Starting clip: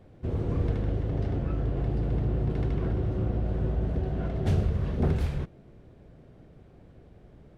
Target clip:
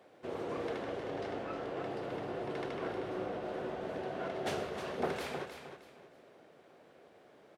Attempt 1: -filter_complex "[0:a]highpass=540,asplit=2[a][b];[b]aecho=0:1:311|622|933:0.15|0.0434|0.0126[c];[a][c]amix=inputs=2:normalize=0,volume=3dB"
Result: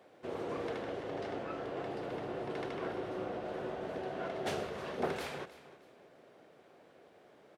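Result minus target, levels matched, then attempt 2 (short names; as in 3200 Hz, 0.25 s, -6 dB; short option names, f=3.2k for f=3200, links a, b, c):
echo-to-direct -8 dB
-filter_complex "[0:a]highpass=540,asplit=2[a][b];[b]aecho=0:1:311|622|933:0.376|0.109|0.0316[c];[a][c]amix=inputs=2:normalize=0,volume=3dB"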